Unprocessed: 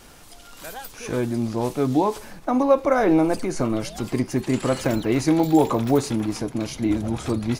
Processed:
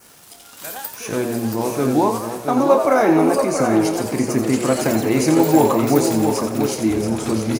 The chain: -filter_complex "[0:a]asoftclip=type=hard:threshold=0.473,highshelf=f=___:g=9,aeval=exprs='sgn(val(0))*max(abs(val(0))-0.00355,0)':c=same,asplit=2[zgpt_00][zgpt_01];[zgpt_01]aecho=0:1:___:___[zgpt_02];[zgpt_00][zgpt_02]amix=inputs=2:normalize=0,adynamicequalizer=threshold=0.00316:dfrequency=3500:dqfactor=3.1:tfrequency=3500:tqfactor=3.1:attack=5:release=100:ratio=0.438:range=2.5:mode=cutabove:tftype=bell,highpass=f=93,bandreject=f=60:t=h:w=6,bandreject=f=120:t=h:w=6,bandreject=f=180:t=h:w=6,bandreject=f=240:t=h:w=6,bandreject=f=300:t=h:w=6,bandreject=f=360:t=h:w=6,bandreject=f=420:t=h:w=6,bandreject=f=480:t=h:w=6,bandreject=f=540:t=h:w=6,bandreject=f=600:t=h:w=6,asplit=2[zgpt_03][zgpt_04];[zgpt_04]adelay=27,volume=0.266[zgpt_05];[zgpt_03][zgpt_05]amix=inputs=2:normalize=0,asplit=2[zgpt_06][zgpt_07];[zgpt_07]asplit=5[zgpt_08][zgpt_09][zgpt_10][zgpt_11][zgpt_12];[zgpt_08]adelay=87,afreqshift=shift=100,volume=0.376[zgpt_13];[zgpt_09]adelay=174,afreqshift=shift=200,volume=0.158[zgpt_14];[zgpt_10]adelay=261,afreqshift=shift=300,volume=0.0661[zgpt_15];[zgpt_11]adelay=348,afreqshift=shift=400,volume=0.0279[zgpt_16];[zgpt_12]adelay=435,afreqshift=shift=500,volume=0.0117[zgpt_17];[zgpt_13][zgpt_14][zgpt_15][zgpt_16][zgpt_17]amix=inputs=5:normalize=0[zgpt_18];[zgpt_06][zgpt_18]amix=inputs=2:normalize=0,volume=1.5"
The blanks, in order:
7500, 679, 0.473